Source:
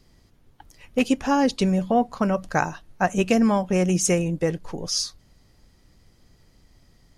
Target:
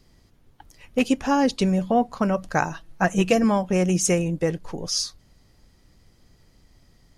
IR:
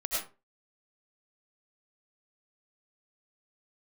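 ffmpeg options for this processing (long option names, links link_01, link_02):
-filter_complex "[0:a]asettb=1/sr,asplit=3[link_01][link_02][link_03];[link_01]atrim=end=2.704[link_04];[link_02]atrim=start=2.7:end=3.44,asetpts=PTS-STARTPTS,afade=type=in:duration=0.004:curve=qsin,afade=type=out:start_time=0.736:duration=0.004:curve=qsin,aecho=1:1:6.1:0.63,atrim=end_sample=32634[link_05];[link_03]atrim=start=3.436[link_06];[link_04][link_05]acrossfade=duration=0.004:curve1=hsin:curve2=qsin[link_07];[link_07][link_06]acrossfade=duration=0.004:curve1=qsin:curve2=hsin"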